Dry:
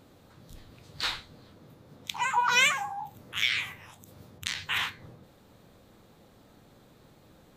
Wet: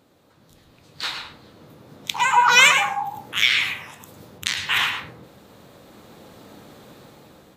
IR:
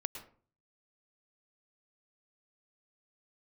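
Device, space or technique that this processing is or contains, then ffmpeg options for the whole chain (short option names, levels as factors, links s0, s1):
far laptop microphone: -filter_complex "[1:a]atrim=start_sample=2205[s0];[0:a][s0]afir=irnorm=-1:irlink=0,highpass=f=170:p=1,dynaudnorm=f=580:g=5:m=6.31"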